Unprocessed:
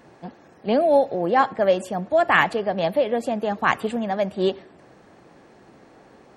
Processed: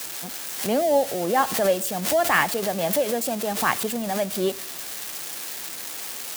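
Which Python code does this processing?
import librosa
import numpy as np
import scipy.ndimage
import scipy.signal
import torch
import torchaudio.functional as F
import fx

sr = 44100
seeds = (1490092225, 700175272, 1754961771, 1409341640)

y = x + 0.5 * 10.0 ** (-17.0 / 20.0) * np.diff(np.sign(x), prepend=np.sign(x[:1]))
y = fx.pre_swell(y, sr, db_per_s=80.0)
y = y * librosa.db_to_amplitude(-3.0)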